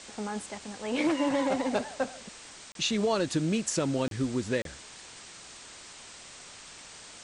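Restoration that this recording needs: interpolate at 2.72/4.08/4.62, 32 ms; noise print and reduce 27 dB

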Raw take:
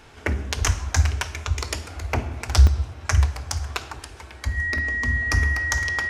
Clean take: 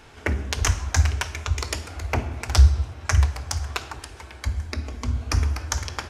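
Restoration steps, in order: notch 1900 Hz, Q 30; interpolate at 2.67/4.78, 2.7 ms

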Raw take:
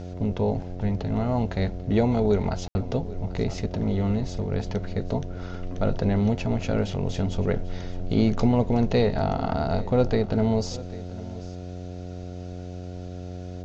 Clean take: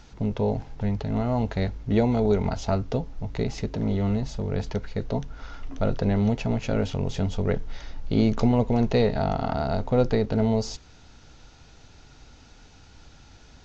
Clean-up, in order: de-hum 90.1 Hz, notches 8; room tone fill 2.68–2.75; inverse comb 0.792 s -18.5 dB

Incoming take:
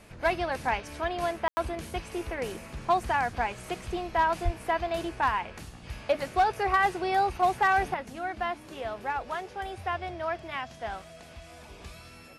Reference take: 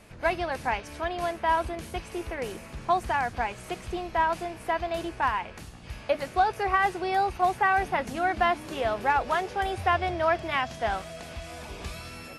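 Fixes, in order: clip repair -16.5 dBFS; de-plosive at 4.44; room tone fill 1.48–1.57; gain 0 dB, from 7.94 s +7.5 dB

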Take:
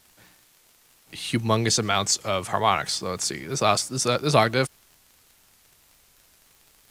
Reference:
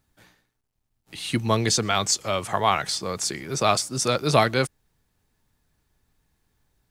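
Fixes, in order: de-click; expander -51 dBFS, range -21 dB

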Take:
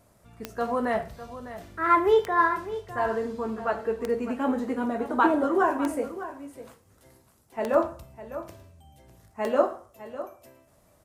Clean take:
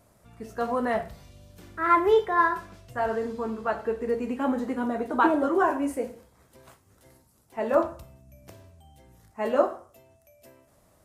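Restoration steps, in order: de-click; inverse comb 0.603 s -13.5 dB

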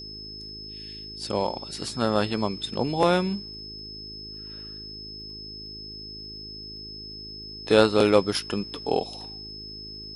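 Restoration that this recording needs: de-click; de-hum 52.7 Hz, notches 8; notch 5200 Hz, Q 30

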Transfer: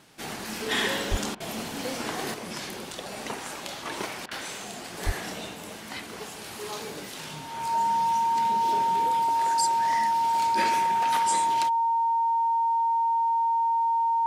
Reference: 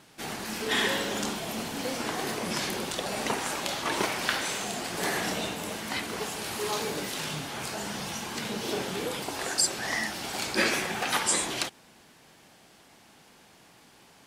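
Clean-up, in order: notch 920 Hz, Q 30; de-plosive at 1.1/5.05; interpolate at 1.35/4.26, 51 ms; gain correction +5 dB, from 2.34

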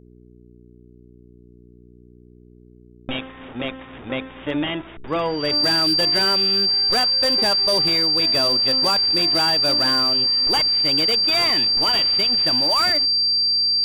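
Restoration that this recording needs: clip repair -13.5 dBFS; de-hum 60.4 Hz, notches 7; notch 4700 Hz, Q 30

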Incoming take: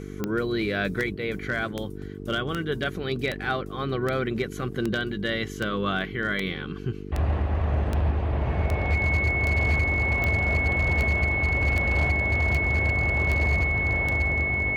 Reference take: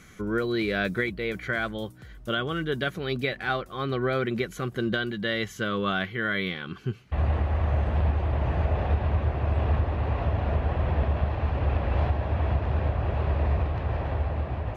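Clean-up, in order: clip repair -16.5 dBFS; de-click; de-hum 49.1 Hz, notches 9; notch 2200 Hz, Q 30

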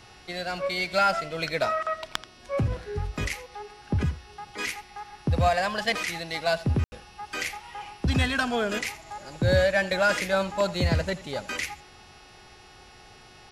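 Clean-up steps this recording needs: clip repair -11.5 dBFS; de-hum 365.5 Hz, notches 16; room tone fill 6.84–6.92; inverse comb 83 ms -17.5 dB

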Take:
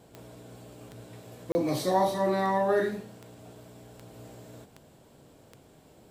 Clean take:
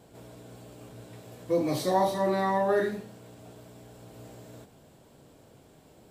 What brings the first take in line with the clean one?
de-click; interpolate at 1.52, 30 ms

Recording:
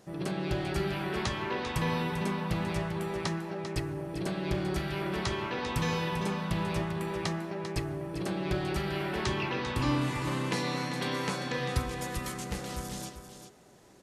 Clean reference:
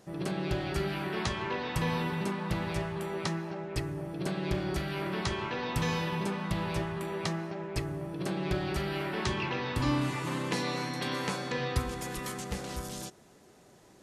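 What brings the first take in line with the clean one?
inverse comb 0.395 s -9.5 dB

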